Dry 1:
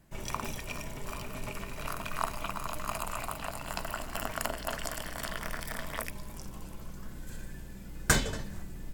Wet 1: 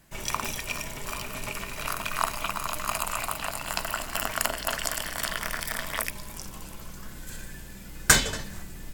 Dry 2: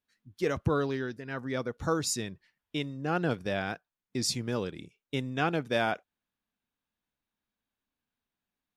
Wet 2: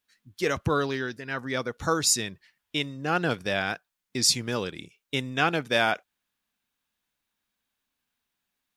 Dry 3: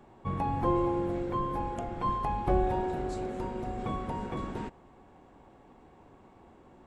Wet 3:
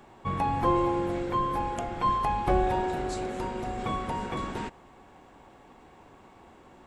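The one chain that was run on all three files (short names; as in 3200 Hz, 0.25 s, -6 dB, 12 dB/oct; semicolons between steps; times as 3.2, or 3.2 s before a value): tilt shelf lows -4.5 dB; gain +5 dB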